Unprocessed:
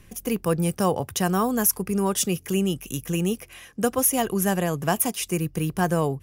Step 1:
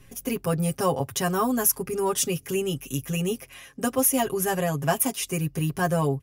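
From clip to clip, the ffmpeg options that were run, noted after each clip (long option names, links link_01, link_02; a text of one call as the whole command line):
ffmpeg -i in.wav -af "aecho=1:1:7.4:0.95,volume=-3.5dB" out.wav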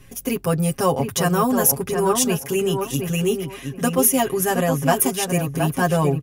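ffmpeg -i in.wav -filter_complex "[0:a]asplit=2[link_01][link_02];[link_02]adelay=720,lowpass=frequency=1900:poles=1,volume=-5dB,asplit=2[link_03][link_04];[link_04]adelay=720,lowpass=frequency=1900:poles=1,volume=0.23,asplit=2[link_05][link_06];[link_06]adelay=720,lowpass=frequency=1900:poles=1,volume=0.23[link_07];[link_01][link_03][link_05][link_07]amix=inputs=4:normalize=0,volume=4.5dB" out.wav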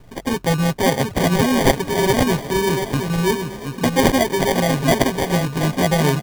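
ffmpeg -i in.wav -filter_complex "[0:a]acrusher=samples=33:mix=1:aa=0.000001,asplit=5[link_01][link_02][link_03][link_04][link_05];[link_02]adelay=345,afreqshift=36,volume=-18dB[link_06];[link_03]adelay=690,afreqshift=72,volume=-23.7dB[link_07];[link_04]adelay=1035,afreqshift=108,volume=-29.4dB[link_08];[link_05]adelay=1380,afreqshift=144,volume=-35dB[link_09];[link_01][link_06][link_07][link_08][link_09]amix=inputs=5:normalize=0,volume=2dB" out.wav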